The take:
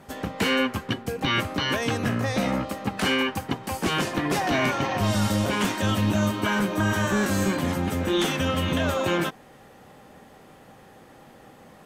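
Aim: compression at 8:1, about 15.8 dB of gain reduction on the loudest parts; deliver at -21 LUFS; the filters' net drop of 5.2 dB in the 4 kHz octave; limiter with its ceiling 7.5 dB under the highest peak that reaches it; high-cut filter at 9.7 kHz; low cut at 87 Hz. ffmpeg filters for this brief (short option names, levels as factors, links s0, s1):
-af "highpass=87,lowpass=9700,equalizer=f=4000:t=o:g=-8,acompressor=threshold=0.0141:ratio=8,volume=11.9,alimiter=limit=0.299:level=0:latency=1"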